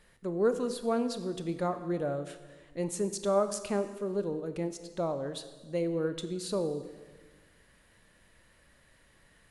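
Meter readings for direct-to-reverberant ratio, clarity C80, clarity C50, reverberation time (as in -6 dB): 9.5 dB, 12.5 dB, 11.0 dB, 1.4 s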